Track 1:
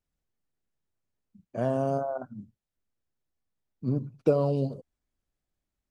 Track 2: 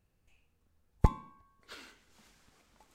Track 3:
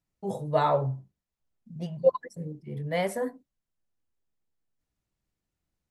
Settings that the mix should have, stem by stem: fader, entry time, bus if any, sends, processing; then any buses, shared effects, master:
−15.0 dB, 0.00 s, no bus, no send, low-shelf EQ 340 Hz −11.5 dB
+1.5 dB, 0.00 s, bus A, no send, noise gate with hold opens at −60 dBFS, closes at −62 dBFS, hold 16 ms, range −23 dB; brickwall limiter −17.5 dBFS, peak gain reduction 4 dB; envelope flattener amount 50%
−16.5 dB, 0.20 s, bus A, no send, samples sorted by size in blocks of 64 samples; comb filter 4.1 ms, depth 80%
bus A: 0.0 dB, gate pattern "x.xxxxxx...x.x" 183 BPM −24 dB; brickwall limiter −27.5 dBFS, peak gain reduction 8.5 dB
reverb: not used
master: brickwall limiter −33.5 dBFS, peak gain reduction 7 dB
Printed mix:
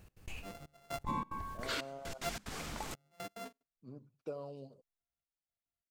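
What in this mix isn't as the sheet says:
stem 3: missing comb filter 4.1 ms, depth 80%
master: missing brickwall limiter −33.5 dBFS, peak gain reduction 7 dB

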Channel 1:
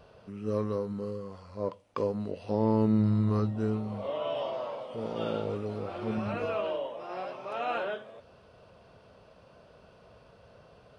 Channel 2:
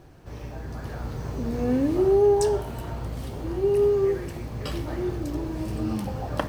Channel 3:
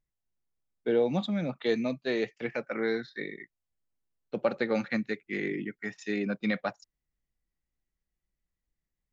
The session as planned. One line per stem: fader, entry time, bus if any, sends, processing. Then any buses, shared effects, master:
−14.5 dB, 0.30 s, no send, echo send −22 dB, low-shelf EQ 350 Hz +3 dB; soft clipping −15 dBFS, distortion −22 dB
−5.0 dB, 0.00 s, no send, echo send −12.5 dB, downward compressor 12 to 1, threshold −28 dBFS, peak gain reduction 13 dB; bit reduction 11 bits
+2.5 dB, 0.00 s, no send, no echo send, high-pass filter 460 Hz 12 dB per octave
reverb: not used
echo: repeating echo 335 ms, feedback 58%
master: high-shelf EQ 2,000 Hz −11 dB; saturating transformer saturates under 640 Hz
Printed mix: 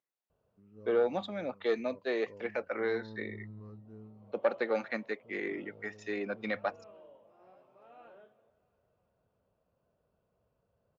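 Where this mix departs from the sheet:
stem 1 −14.5 dB → −22.0 dB
stem 2: muted

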